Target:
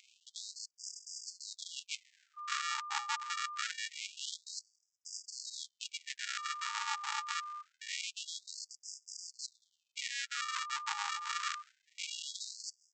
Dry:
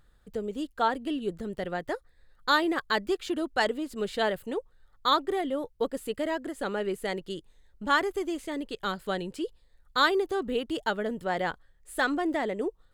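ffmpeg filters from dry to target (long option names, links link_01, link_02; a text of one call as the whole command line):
ffmpeg -i in.wav -af "acontrast=90,adynamicequalizer=threshold=0.01:dfrequency=4300:dqfactor=1.4:tfrequency=4300:tqfactor=1.4:attack=5:release=100:ratio=0.375:range=2.5:mode=boostabove:tftype=bell,aresample=16000,acrusher=samples=31:mix=1:aa=0.000001,aresample=44100,highpass=190,areverse,acompressor=threshold=-40dB:ratio=5,areverse,aeval=exprs='val(0)+0.00224*sin(2*PI*1200*n/s)':channel_layout=same,afftfilt=real='re*gte(b*sr/1024,810*pow(4900/810,0.5+0.5*sin(2*PI*0.25*pts/sr)))':imag='im*gte(b*sr/1024,810*pow(4900/810,0.5+0.5*sin(2*PI*0.25*pts/sr)))':win_size=1024:overlap=0.75,volume=12dB" out.wav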